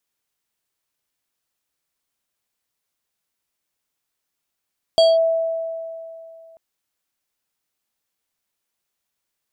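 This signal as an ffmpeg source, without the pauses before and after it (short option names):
-f lavfi -i "aevalsrc='0.355*pow(10,-3*t/2.69)*sin(2*PI*656*t+0.56*clip(1-t/0.2,0,1)*sin(2*PI*6*656*t))':d=1.59:s=44100"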